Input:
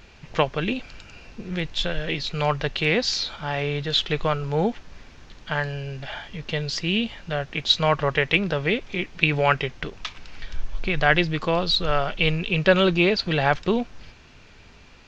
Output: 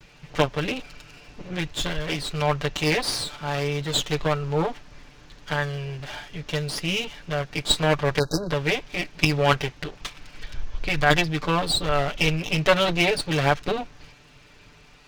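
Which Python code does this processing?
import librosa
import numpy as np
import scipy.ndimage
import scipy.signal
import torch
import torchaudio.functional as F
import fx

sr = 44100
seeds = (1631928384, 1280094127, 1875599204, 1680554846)

y = fx.lower_of_two(x, sr, delay_ms=6.8)
y = fx.spec_erase(y, sr, start_s=8.19, length_s=0.32, low_hz=1700.0, high_hz=3800.0)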